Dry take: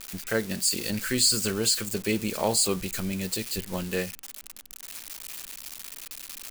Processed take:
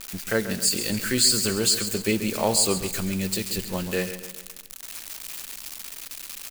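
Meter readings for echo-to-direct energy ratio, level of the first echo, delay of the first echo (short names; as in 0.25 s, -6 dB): -10.5 dB, -11.5 dB, 0.135 s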